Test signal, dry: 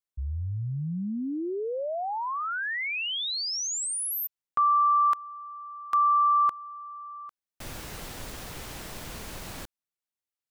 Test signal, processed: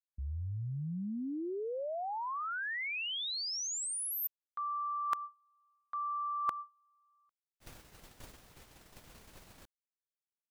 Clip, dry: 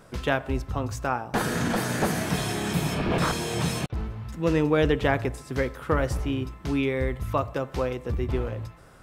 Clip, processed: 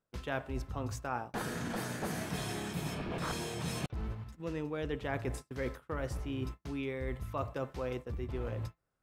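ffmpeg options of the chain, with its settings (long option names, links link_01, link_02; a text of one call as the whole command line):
ffmpeg -i in.wav -af "agate=range=-33dB:threshold=-31dB:ratio=3:release=170:detection=rms,areverse,acompressor=threshold=-37dB:ratio=8:attack=69:release=399:knee=6:detection=peak,areverse" out.wav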